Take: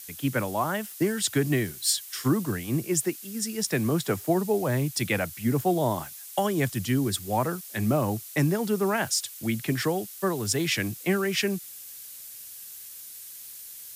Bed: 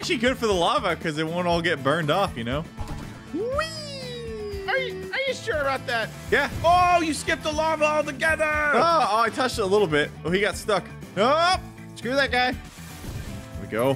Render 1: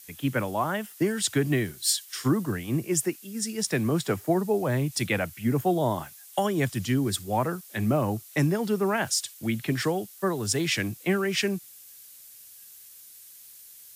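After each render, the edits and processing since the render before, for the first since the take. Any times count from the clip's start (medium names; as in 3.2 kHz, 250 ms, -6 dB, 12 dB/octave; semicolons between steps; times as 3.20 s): noise print and reduce 6 dB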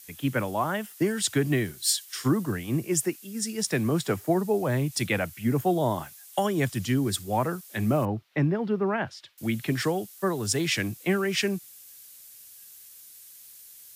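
8.05–9.38 s: distance through air 340 m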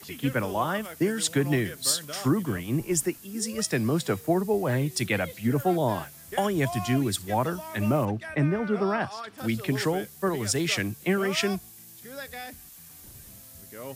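add bed -17.5 dB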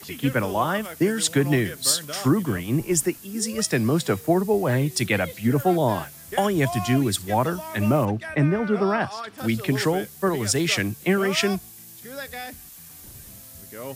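trim +4 dB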